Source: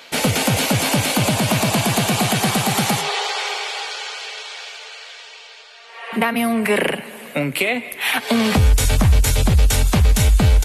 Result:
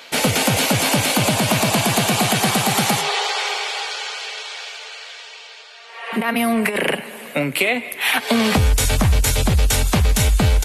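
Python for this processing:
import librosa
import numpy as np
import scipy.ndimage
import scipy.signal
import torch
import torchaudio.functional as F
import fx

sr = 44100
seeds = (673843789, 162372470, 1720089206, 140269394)

y = fx.low_shelf(x, sr, hz=200.0, db=-4.5)
y = fx.over_compress(y, sr, threshold_db=-20.0, ratio=-0.5, at=(6.06, 6.96))
y = y * 10.0 ** (1.5 / 20.0)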